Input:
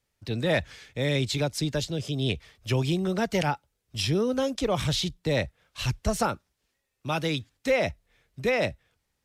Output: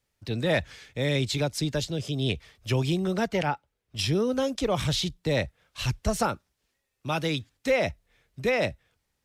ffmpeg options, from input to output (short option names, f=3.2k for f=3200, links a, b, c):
-filter_complex "[0:a]asettb=1/sr,asplit=3[a][b][c];[a]atrim=end=3.284[d];[b]atrim=start=3.28:end=3.99,asetpts=PTS-STARTPTS,afade=t=in:d=0.004:c=qsin,afade=t=out:st=0.706:d=0.004:c=qsin,bass=f=250:g=-3,treble=f=4k:g=-9[e];[c]atrim=start=3.986[f];[d][e]acrossfade=d=0.004:c1=hsin:c2=qsin[g];[g][f]acrossfade=d=0.004:c1=qsin:c2=hsin"